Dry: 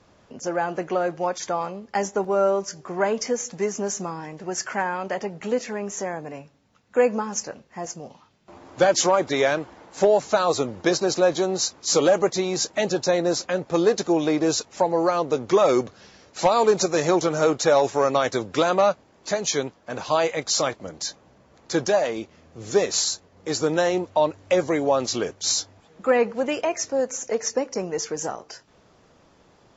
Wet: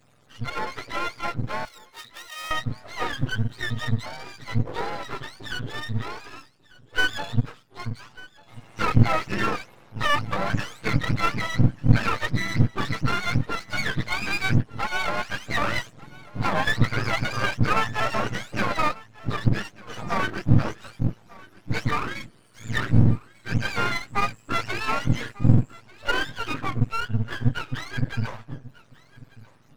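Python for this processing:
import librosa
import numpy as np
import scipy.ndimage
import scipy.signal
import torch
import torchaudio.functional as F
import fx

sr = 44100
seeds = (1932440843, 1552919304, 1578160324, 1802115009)

p1 = fx.octave_mirror(x, sr, pivot_hz=860.0)
p2 = np.maximum(p1, 0.0)
p3 = fx.differentiator(p2, sr, at=(1.65, 2.51))
p4 = p3 + fx.echo_single(p3, sr, ms=1193, db=-21.5, dry=0)
y = F.gain(torch.from_numpy(p4), 1.5).numpy()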